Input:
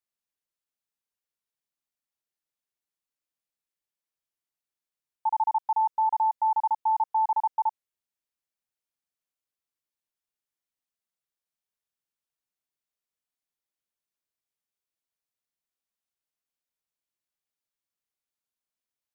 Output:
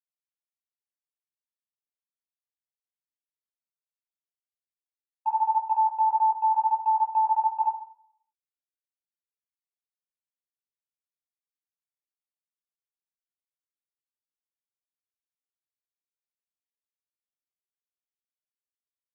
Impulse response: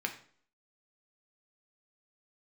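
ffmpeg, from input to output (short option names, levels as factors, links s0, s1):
-filter_complex "[0:a]agate=range=0.0178:threshold=0.0398:ratio=16:detection=peak,asplit=2[s0][s1];[1:a]atrim=start_sample=2205,asetrate=34398,aresample=44100,adelay=16[s2];[s1][s2]afir=irnorm=-1:irlink=0,volume=0.708[s3];[s0][s3]amix=inputs=2:normalize=0,volume=0.668"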